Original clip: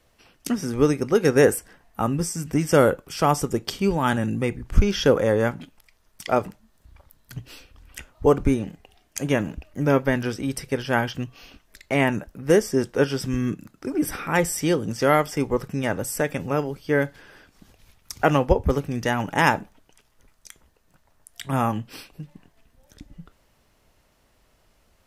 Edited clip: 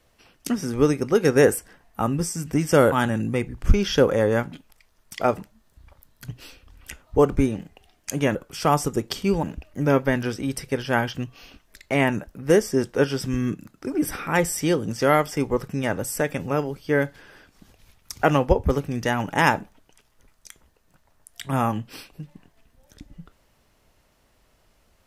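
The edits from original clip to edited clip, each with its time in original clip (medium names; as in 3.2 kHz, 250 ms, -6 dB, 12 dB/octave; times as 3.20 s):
2.92–4.00 s: move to 9.43 s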